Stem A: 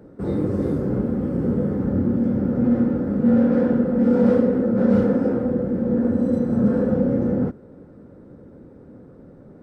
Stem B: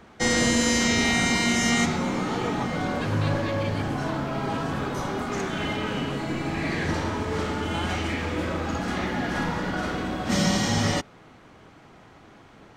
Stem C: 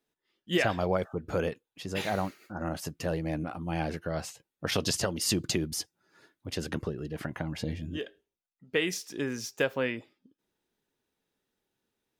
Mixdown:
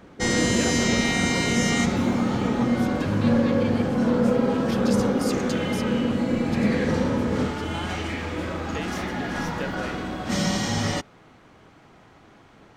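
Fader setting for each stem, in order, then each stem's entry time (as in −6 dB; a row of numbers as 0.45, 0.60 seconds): −4.5, −1.5, −6.5 decibels; 0.00, 0.00, 0.00 seconds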